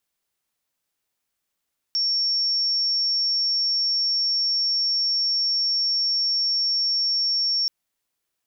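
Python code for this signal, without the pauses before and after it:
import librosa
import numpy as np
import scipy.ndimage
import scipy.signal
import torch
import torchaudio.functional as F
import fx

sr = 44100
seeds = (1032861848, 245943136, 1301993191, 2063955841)

y = 10.0 ** (-19.5 / 20.0) * np.sin(2.0 * np.pi * (5480.0 * (np.arange(round(5.73 * sr)) / sr)))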